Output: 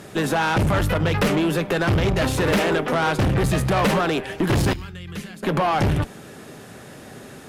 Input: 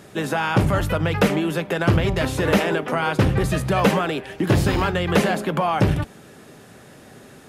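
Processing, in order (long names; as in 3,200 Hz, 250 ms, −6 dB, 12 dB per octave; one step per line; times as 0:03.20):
0:00.94–0:01.37: downward expander −21 dBFS
0:04.73–0:05.43: guitar amp tone stack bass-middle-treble 6-0-2
tube saturation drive 21 dB, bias 0.35
level +5.5 dB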